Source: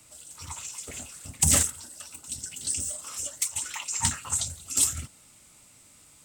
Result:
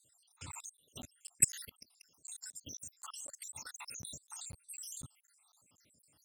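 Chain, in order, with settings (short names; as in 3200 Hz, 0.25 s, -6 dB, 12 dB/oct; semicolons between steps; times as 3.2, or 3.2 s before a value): random spectral dropouts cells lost 77%; HPF 90 Hz 12 dB/oct; level quantiser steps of 24 dB; crackling interface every 0.25 s, samples 512, zero, from 0.52; gain +1.5 dB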